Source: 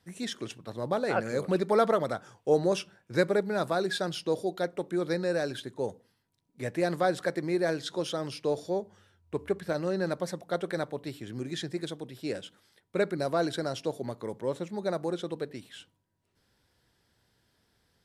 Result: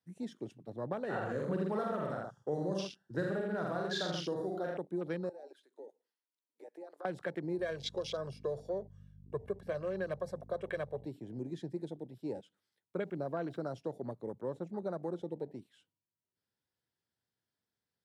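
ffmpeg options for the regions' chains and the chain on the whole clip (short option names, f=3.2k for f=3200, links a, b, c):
-filter_complex "[0:a]asettb=1/sr,asplit=3[a][b][c];[a]atrim=end=1.054[d];[b]atrim=start=1.05:end=4.77,asetpts=PTS-STARTPTS,afade=t=in:d=0.004:c=qsin,afade=t=out:st=3.716:d=0.004:c=qsin,asuperstop=centerf=2300:order=20:qfactor=3.2,asplit=2[e][f];[f]adelay=47,volume=-2.5dB[g];[e][g]amix=inputs=2:normalize=0,atrim=end_sample=164052,aecho=1:1:83:0.596,atrim=end_sample=164052[h];[c]atrim=start=4.766[i];[d][h]acrossfade=d=0.004:c1=hsin:c2=qsin[j];[j][i]acrossfade=d=0.004:c1=qsin:c2=hsin,asettb=1/sr,asplit=3[k][l][m];[k]atrim=end=5.294[n];[l]atrim=start=5.29:end=7.05,asetpts=PTS-STARTPTS,afade=t=in:d=0.004:c=qsin,afade=t=out:st=1.756:d=0.004:c=qsin,highpass=f=340:w=0.5412,highpass=f=340:w=1.3066,acompressor=threshold=-45dB:ratio=3:attack=3.2:release=140:knee=1:detection=peak[o];[m]atrim=start=7.046[p];[n][o]acrossfade=d=0.004:c1=hsin:c2=qsin[q];[q][p]acrossfade=d=0.004:c1=qsin:c2=hsin,asettb=1/sr,asplit=3[r][s][t];[r]atrim=end=7.584[u];[s]atrim=start=7.58:end=11.06,asetpts=PTS-STARTPTS,afade=t=in:d=0.004:c=qsin,afade=t=out:st=3.476:d=0.004:c=qsin,bandreject=f=170:w=5.1,aecho=1:1:1.8:1,atrim=end_sample=153468,aeval=exprs='val(0)+0.00631*(sin(2*PI*50*n/s)+sin(2*PI*2*50*n/s)/2+sin(2*PI*3*50*n/s)/3+sin(2*PI*4*50*n/s)/4+sin(2*PI*5*50*n/s)/5)':c=same[v];[t]atrim=start=11.056[w];[u][v]acrossfade=d=0.004:c1=hsin:c2=qsin[x];[x][w]acrossfade=d=0.004:c1=qsin:c2=hsin,asettb=1/sr,asplit=3[y][z][aa];[y]atrim=end=12.974[ab];[z]atrim=start=12.97:end=13.6,asetpts=PTS-STARTPTS,afade=t=in:d=0.004:c=qsin,afade=t=out:st=0.626:d=0.004:c=qsin,highshelf=f=5.3k:g=-12,aeval=exprs='val(0)*gte(abs(val(0)),0.00282)':c=same[ac];[aa]atrim=start=13.596[ad];[ab][ac]acrossfade=d=0.004:c1=hsin:c2=qsin[ae];[ae][ad]acrossfade=d=0.004:c1=qsin:c2=hsin,afwtdn=0.0126,highpass=94,acrossover=split=180|3000[af][ag][ah];[ag]acompressor=threshold=-30dB:ratio=6[ai];[af][ai][ah]amix=inputs=3:normalize=0,volume=-4dB"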